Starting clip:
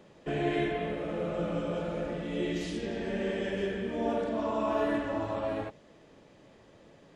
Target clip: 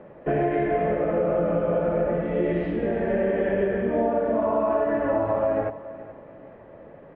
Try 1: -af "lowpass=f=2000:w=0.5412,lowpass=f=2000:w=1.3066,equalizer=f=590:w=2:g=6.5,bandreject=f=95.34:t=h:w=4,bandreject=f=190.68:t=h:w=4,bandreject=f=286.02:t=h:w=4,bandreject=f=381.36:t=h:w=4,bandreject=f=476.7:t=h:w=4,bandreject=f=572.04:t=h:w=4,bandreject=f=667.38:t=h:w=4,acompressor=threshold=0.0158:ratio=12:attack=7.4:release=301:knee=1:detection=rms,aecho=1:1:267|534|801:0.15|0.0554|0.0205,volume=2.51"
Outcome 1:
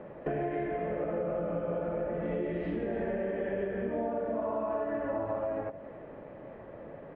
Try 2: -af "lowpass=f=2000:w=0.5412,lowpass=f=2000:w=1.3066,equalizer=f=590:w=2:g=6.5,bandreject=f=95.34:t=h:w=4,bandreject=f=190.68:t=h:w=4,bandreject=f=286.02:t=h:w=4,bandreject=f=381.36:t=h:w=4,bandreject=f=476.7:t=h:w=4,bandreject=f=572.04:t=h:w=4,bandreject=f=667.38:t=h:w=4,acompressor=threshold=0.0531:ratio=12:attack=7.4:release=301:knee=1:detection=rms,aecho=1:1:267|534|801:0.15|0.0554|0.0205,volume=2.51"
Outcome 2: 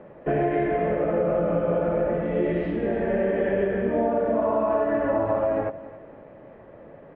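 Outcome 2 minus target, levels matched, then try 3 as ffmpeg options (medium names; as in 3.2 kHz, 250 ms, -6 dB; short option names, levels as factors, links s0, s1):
echo 160 ms early
-af "lowpass=f=2000:w=0.5412,lowpass=f=2000:w=1.3066,equalizer=f=590:w=2:g=6.5,bandreject=f=95.34:t=h:w=4,bandreject=f=190.68:t=h:w=4,bandreject=f=286.02:t=h:w=4,bandreject=f=381.36:t=h:w=4,bandreject=f=476.7:t=h:w=4,bandreject=f=572.04:t=h:w=4,bandreject=f=667.38:t=h:w=4,acompressor=threshold=0.0531:ratio=12:attack=7.4:release=301:knee=1:detection=rms,aecho=1:1:427|854|1281:0.15|0.0554|0.0205,volume=2.51"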